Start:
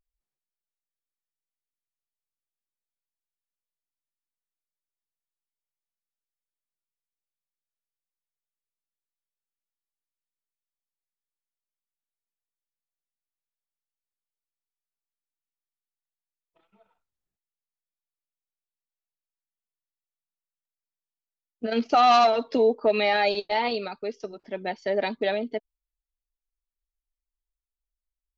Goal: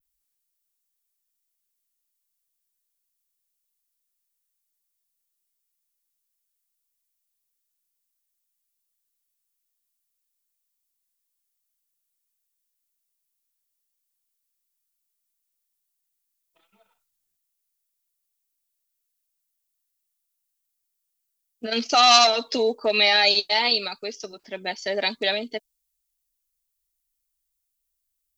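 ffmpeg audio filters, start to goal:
-af "crystalizer=i=7:c=0,adynamicequalizer=threshold=0.02:dfrequency=6000:dqfactor=0.76:tfrequency=6000:tqfactor=0.76:attack=5:release=100:ratio=0.375:range=3:mode=boostabove:tftype=bell,volume=0.708"

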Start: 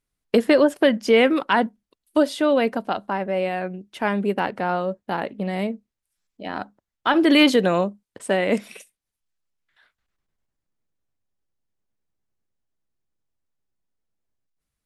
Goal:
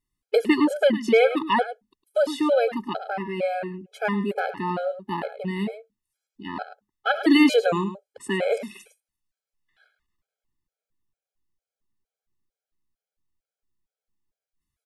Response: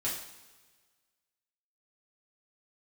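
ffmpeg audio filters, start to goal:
-af "aecho=1:1:106:0.251,afftfilt=real='re*gt(sin(2*PI*2.2*pts/sr)*(1-2*mod(floor(b*sr/1024/430),2)),0)':imag='im*gt(sin(2*PI*2.2*pts/sr)*(1-2*mod(floor(b*sr/1024/430),2)),0)':win_size=1024:overlap=0.75"

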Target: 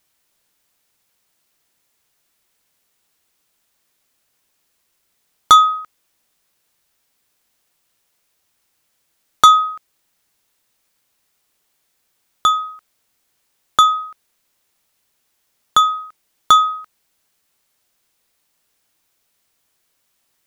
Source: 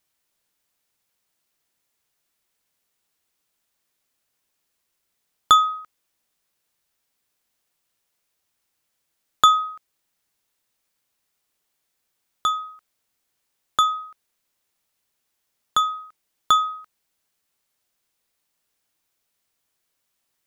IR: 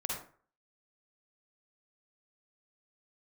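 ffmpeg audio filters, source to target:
-af "aeval=exprs='0.841*sin(PI/2*1.58*val(0)/0.841)':c=same"

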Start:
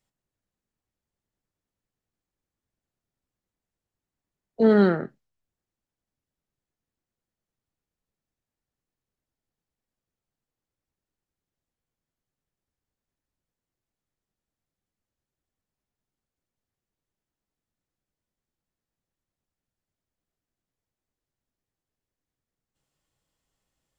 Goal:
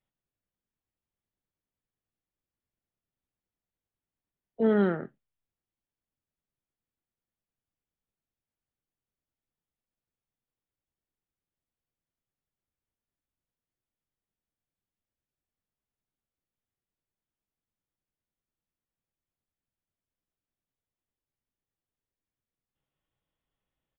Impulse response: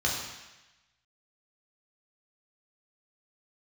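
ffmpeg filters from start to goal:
-af "aresample=8000,aresample=44100,volume=0.501"

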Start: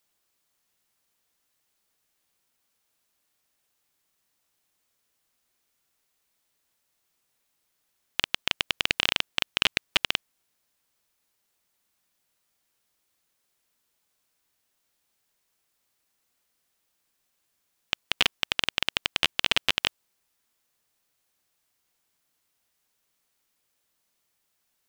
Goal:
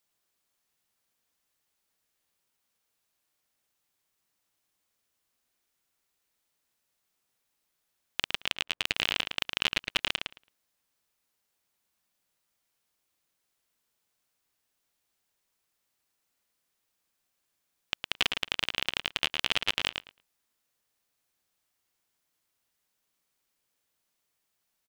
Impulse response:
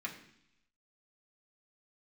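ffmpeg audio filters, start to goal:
-filter_complex "[0:a]asettb=1/sr,asplit=3[s0][s1][s2];[s0]atrim=end=8.474[s3];[s1]atrim=start=8.47:end=8.87,asetpts=PTS-STARTPTS,afade=t=in:d=0.004:c=qsin,afade=t=out:st=0.396:d=0.004:c=qsin,adynamicsmooth=sensitivity=3.5:basefreq=1200[s4];[s2]atrim=start=8.866[s5];[s3][s4]acrossfade=d=0.004:c1=hsin:c2=qsin[s6];[s6][s5]acrossfade=d=0.004:c1=qsin:c2=hsin,asplit=2[s7][s8];[s8]adelay=110,lowpass=f=4900:p=1,volume=0.562,asplit=2[s9][s10];[s10]adelay=110,lowpass=f=4900:p=1,volume=0.16,asplit=2[s11][s12];[s12]adelay=110,lowpass=f=4900:p=1,volume=0.16[s13];[s9][s11][s13]amix=inputs=3:normalize=0[s14];[s7][s14]amix=inputs=2:normalize=0,volume=0.596"

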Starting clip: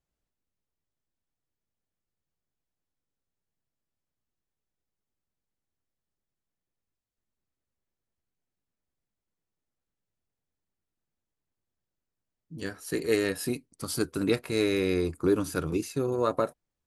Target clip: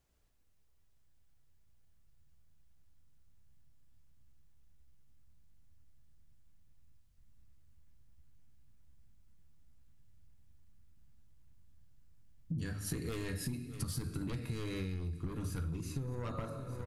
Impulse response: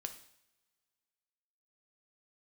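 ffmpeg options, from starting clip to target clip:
-filter_complex "[0:a]bandreject=f=50:t=h:w=6,bandreject=f=100:t=h:w=6,bandreject=f=150:t=h:w=6,bandreject=f=200:t=h:w=6[s0];[1:a]atrim=start_sample=2205[s1];[s0][s1]afir=irnorm=-1:irlink=0,asplit=2[s2][s3];[s3]alimiter=level_in=1.06:limit=0.0631:level=0:latency=1,volume=0.944,volume=0.708[s4];[s2][s4]amix=inputs=2:normalize=0,aeval=exprs='0.237*sin(PI/2*2.24*val(0)/0.237)':c=same,asubboost=boost=11:cutoff=130,asplit=2[s5][s6];[s6]aecho=0:1:613|1226|1839:0.0841|0.0328|0.0128[s7];[s5][s7]amix=inputs=2:normalize=0,acompressor=threshold=0.0282:ratio=16,volume=0.631"

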